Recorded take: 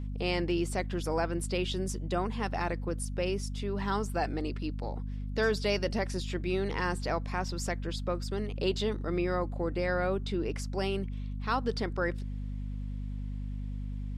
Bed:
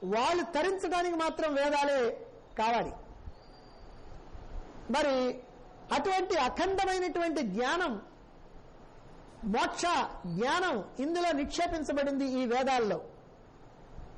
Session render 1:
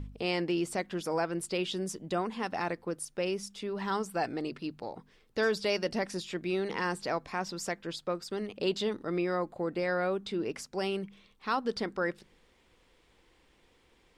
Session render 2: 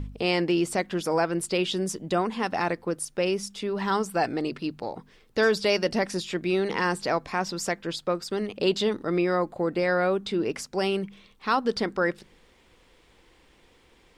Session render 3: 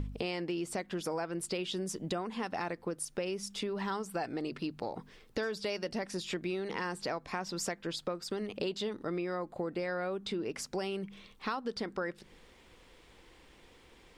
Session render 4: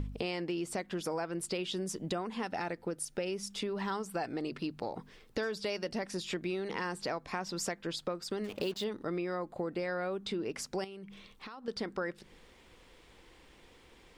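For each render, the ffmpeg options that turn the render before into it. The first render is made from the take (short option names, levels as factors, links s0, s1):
-af "bandreject=f=50:t=h:w=4,bandreject=f=100:t=h:w=4,bandreject=f=150:t=h:w=4,bandreject=f=200:t=h:w=4,bandreject=f=250:t=h:w=4"
-af "volume=2.11"
-af "acompressor=threshold=0.0224:ratio=6"
-filter_complex "[0:a]asettb=1/sr,asplit=3[s0][s1][s2];[s0]atrim=end=2.434[s3];[s1]atrim=start=2.43:end=3.32,asetpts=PTS-STARTPTS,afade=t=in:d=0.004:c=qsin,afade=t=out:st=0.886:d=0.004:c=qsin,asuperstop=centerf=1100:order=4:qfactor=6.6[s4];[s2]atrim=start=3.316[s5];[s3][s4]acrossfade=d=0.004:c1=hsin:c2=qsin[s6];[s6][s5]acrossfade=d=0.004:c1=qsin:c2=hsin,asettb=1/sr,asplit=3[s7][s8][s9];[s7]atrim=end=8.444[s10];[s8]atrim=start=8.44:end=8.84,asetpts=PTS-STARTPTS,afade=t=in:d=0.004:c=qsin,afade=t=out:st=0.396:d=0.004:c=qsin,acrusher=bits=7:mix=0:aa=0.5[s11];[s9]atrim=start=8.836[s12];[s10][s11]acrossfade=d=0.004:c1=hsin:c2=qsin[s13];[s13][s12]acrossfade=d=0.004:c1=qsin:c2=hsin,asettb=1/sr,asplit=3[s14][s15][s16];[s14]atrim=end=10.844[s17];[s15]atrim=start=10.84:end=11.68,asetpts=PTS-STARTPTS,afade=t=in:d=0.004:c=qsin,afade=t=out:st=0.836:d=0.004:c=qsin,acompressor=threshold=0.00794:ratio=12:attack=3.2:release=140:knee=1:detection=peak[s18];[s16]atrim=start=11.676[s19];[s17][s18]acrossfade=d=0.004:c1=hsin:c2=qsin[s20];[s20][s19]acrossfade=d=0.004:c1=qsin:c2=hsin"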